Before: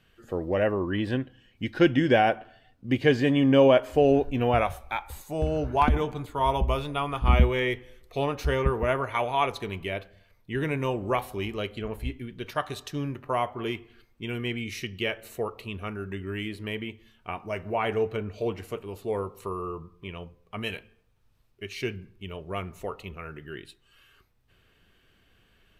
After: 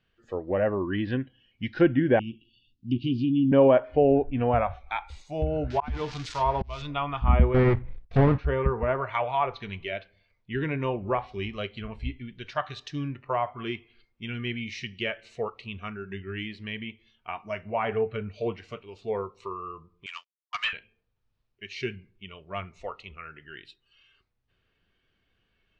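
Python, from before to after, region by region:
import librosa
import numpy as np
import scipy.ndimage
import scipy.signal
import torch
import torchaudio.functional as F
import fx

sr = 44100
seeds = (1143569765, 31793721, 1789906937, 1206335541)

y = fx.chain(x, sr, fx.cheby1_bandstop(low_hz=370.0, high_hz=2700.0, order=5),
    fx.high_shelf(hz=4700.0, db=5.0),
    fx.doubler(ms=17.0, db=-12.0), at=(2.19, 3.52))
y = fx.chain(y, sr, fx.crossing_spikes(level_db=-21.0),
    fx.auto_swell(attack_ms=306.0), at=(5.7, 6.82))
y = fx.chain(y, sr, fx.halfwave_hold(),
    fx.gate_hold(open_db=-39.0, close_db=-42.0, hold_ms=71.0, range_db=-21, attack_ms=1.4, release_ms=100.0),
    fx.bass_treble(bass_db=10, treble_db=-9), at=(7.54, 8.38))
y = fx.chain(y, sr, fx.highpass(hz=1000.0, slope=24),
    fx.leveller(passes=5),
    fx.upward_expand(threshold_db=-38.0, expansion=2.5), at=(20.06, 20.73))
y = scipy.signal.sosfilt(scipy.signal.butter(4, 5700.0, 'lowpass', fs=sr, output='sos'), y)
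y = fx.env_lowpass_down(y, sr, base_hz=1600.0, full_db=-21.0)
y = fx.noise_reduce_blind(y, sr, reduce_db=10)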